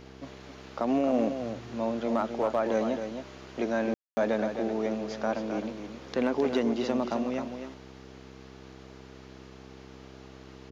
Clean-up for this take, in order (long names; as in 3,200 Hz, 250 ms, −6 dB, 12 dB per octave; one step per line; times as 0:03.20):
hum removal 65.4 Hz, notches 7
ambience match 0:03.94–0:04.17
echo removal 264 ms −8 dB